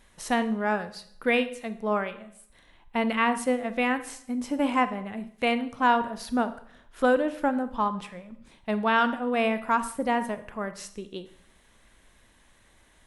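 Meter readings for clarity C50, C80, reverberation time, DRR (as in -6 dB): 13.5 dB, 17.0 dB, 0.65 s, 11.0 dB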